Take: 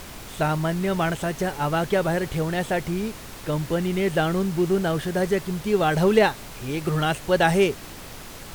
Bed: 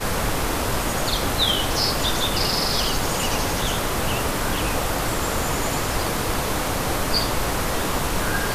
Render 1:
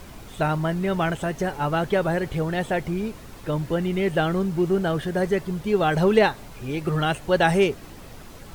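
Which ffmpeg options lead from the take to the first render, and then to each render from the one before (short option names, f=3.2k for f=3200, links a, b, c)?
-af "afftdn=nr=8:nf=-40"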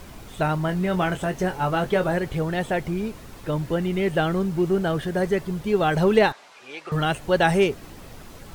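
-filter_complex "[0:a]asettb=1/sr,asplit=3[a][b][c];[a]atrim=end=0.664[d];[b]atrim=start=0.66:end=2.18,asetpts=PTS-STARTPTS,afade=t=in:d=0.004:c=qsin,afade=t=out:st=1.516:d=0.004:c=qsin,asplit=2[e][f];[f]adelay=22,volume=-8.5dB[g];[e][g]amix=inputs=2:normalize=0,atrim=end_sample=67032[h];[c]atrim=start=2.176[i];[d][h]acrossfade=d=0.004:c1=hsin:c2=qsin[j];[j][i]acrossfade=d=0.004:c1=qsin:c2=hsin,asettb=1/sr,asplit=3[k][l][m];[k]atrim=end=6.324[n];[l]atrim=start=6.32:end=6.92,asetpts=PTS-STARTPTS,afade=t=in:d=0.004:c=qsin,afade=t=out:st=0.596:d=0.004:c=qsin,highpass=760,lowpass=6k[o];[m]atrim=start=6.916[p];[n][o]acrossfade=d=0.004:c1=hsin:c2=qsin[q];[q][p]acrossfade=d=0.004:c1=qsin:c2=hsin"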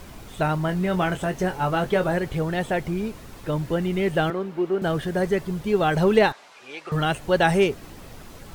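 -filter_complex "[0:a]asettb=1/sr,asplit=3[a][b][c];[a]atrim=end=4.304[d];[b]atrim=start=4.3:end=4.82,asetpts=PTS-STARTPTS,afade=t=in:d=0.004:c=qsin,afade=t=out:st=0.516:d=0.004:c=qsin,acrossover=split=240 3700:gain=0.0794 1 0.2[e][f][g];[e][f][g]amix=inputs=3:normalize=0[h];[c]atrim=start=4.816[i];[d][h]acrossfade=d=0.004:c1=hsin:c2=qsin[j];[j][i]acrossfade=d=0.004:c1=qsin:c2=hsin"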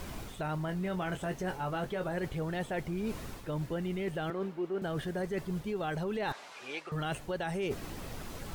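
-af "alimiter=limit=-16.5dB:level=0:latency=1:release=105,areverse,acompressor=threshold=-32dB:ratio=6,areverse"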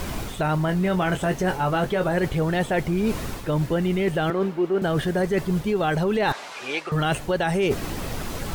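-af "volume=12dB"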